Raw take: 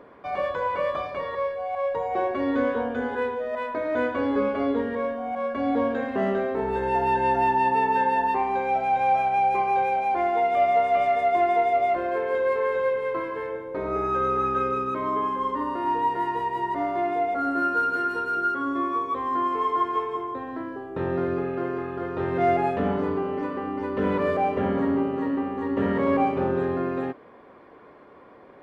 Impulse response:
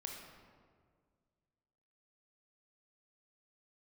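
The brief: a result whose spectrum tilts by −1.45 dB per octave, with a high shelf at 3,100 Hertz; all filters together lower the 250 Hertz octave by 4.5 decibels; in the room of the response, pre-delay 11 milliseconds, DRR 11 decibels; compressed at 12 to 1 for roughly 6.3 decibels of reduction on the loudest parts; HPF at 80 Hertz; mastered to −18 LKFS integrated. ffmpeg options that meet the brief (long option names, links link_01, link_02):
-filter_complex "[0:a]highpass=80,equalizer=frequency=250:width_type=o:gain=-5.5,highshelf=frequency=3100:gain=-7.5,acompressor=threshold=-25dB:ratio=12,asplit=2[link_01][link_02];[1:a]atrim=start_sample=2205,adelay=11[link_03];[link_02][link_03]afir=irnorm=-1:irlink=0,volume=-9dB[link_04];[link_01][link_04]amix=inputs=2:normalize=0,volume=11.5dB"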